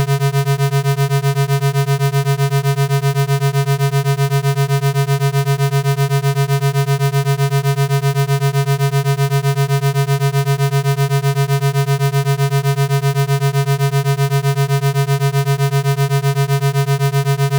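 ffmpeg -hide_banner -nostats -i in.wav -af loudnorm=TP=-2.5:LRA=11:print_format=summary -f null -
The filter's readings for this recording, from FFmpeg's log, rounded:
Input Integrated:    -16.0 LUFS
Input True Peak:      -9.0 dBTP
Input LRA:             0.1 LU
Input Threshold:     -26.0 LUFS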